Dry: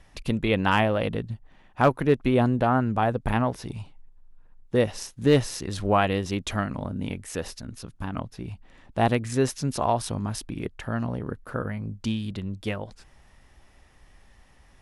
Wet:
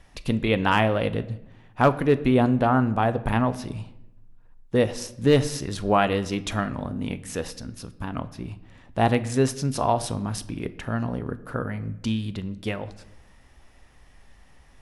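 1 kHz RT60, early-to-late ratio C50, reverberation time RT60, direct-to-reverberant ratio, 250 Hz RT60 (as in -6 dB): 0.85 s, 16.5 dB, 0.90 s, 12.0 dB, 1.2 s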